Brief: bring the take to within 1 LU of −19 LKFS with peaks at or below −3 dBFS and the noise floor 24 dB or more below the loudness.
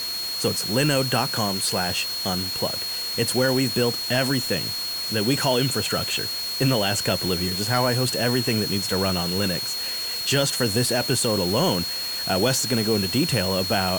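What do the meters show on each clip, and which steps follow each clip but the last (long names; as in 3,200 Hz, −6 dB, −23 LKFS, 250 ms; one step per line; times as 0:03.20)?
interfering tone 4,300 Hz; level of the tone −27 dBFS; background noise floor −29 dBFS; target noise floor −47 dBFS; integrated loudness −22.5 LKFS; sample peak −6.5 dBFS; target loudness −19.0 LKFS
→ notch filter 4,300 Hz, Q 30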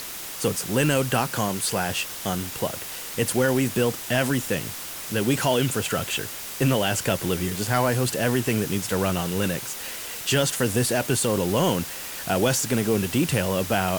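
interfering tone none found; background noise floor −35 dBFS; target noise floor −48 dBFS
→ broadband denoise 13 dB, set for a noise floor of −35 dBFS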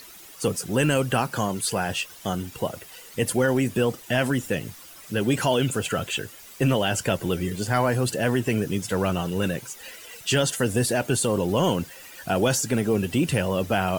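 background noise floor −45 dBFS; target noise floor −49 dBFS
→ broadband denoise 6 dB, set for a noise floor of −45 dBFS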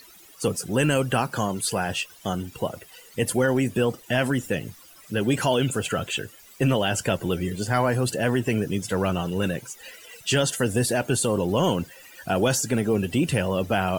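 background noise floor −50 dBFS; integrated loudness −25.0 LKFS; sample peak −8.0 dBFS; target loudness −19.0 LKFS
→ level +6 dB
brickwall limiter −3 dBFS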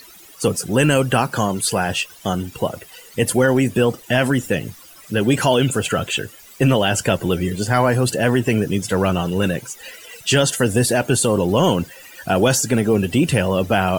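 integrated loudness −19.0 LKFS; sample peak −3.0 dBFS; background noise floor −44 dBFS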